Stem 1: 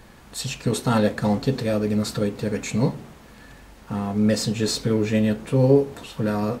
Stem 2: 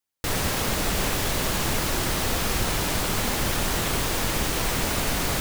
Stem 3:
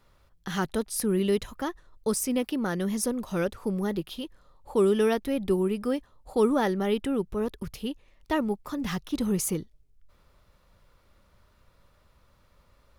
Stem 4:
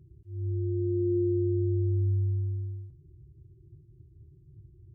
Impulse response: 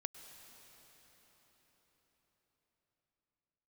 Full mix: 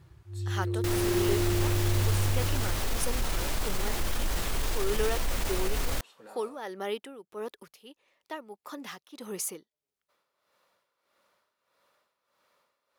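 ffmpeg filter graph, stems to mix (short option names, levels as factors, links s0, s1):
-filter_complex "[0:a]highpass=530,alimiter=limit=0.0794:level=0:latency=1:release=179,volume=0.119[s0];[1:a]asubboost=boost=6.5:cutoff=52,alimiter=limit=0.224:level=0:latency=1:release=16,adelay=600,volume=0.422[s1];[2:a]highpass=450,tremolo=f=1.6:d=0.74,volume=0.794[s2];[3:a]volume=0.891[s3];[s0][s1][s2][s3]amix=inputs=4:normalize=0"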